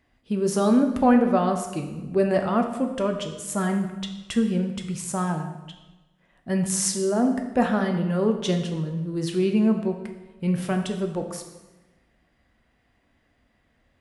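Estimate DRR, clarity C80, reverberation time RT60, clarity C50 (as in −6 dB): 4.5 dB, 9.5 dB, 1.1 s, 7.5 dB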